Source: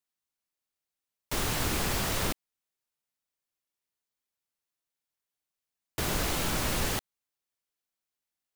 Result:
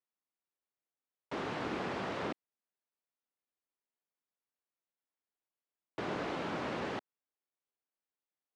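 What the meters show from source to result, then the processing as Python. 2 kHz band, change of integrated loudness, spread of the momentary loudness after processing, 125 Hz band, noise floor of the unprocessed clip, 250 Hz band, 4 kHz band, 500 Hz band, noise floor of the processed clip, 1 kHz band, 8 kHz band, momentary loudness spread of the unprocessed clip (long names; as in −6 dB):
−7.0 dB, −8.5 dB, 7 LU, −12.0 dB, below −85 dBFS, −4.0 dB, −13.5 dB, −2.0 dB, below −85 dBFS, −3.5 dB, −26.0 dB, 7 LU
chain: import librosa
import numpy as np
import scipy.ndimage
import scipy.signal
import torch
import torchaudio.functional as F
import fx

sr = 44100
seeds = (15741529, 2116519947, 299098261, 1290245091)

y = scipy.signal.sosfilt(scipy.signal.butter(2, 240.0, 'highpass', fs=sr, output='sos'), x)
y = fx.spacing_loss(y, sr, db_at_10k=37)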